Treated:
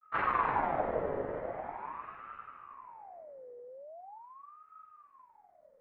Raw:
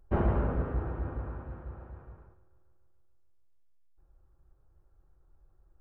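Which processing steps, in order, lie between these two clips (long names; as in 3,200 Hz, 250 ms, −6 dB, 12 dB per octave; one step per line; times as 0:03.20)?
convolution reverb RT60 1.2 s, pre-delay 188 ms, DRR 4.5 dB
granular cloud 100 ms, spray 34 ms, pitch spread up and down by 0 semitones
echo with a time of its own for lows and highs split 360 Hz, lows 398 ms, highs 293 ms, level −5.5 dB
ring modulator whose carrier an LFO sweeps 880 Hz, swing 45%, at 0.42 Hz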